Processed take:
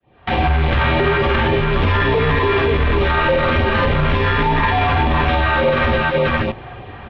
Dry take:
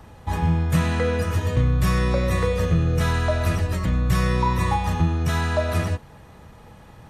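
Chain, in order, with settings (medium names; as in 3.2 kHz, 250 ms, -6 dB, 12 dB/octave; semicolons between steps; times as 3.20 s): fade-in on the opening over 0.87 s; bass shelf 130 Hz -6 dB; compressor with a negative ratio -24 dBFS, ratio -0.5; flange 0.59 Hz, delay 4.3 ms, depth 5.5 ms, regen +68%; in parallel at -4 dB: companded quantiser 2-bit; on the sum: LFO notch sine 3.4 Hz 410–1700 Hz; on a send: multi-tap echo 50/536 ms -3.5/-6 dB; on the sum: mistuned SSB -93 Hz 150–3400 Hz; loudness maximiser +25 dB; trim -7 dB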